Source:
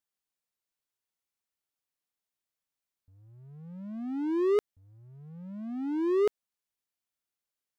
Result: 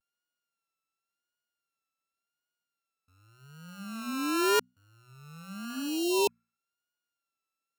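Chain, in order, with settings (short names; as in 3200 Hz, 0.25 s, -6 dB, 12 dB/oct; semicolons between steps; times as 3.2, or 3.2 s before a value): sample sorter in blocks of 32 samples; HPF 140 Hz; notches 60/120/180/240 Hz; vibrato 0.9 Hz 66 cents; spectral repair 5.78–6.59, 1000–2500 Hz both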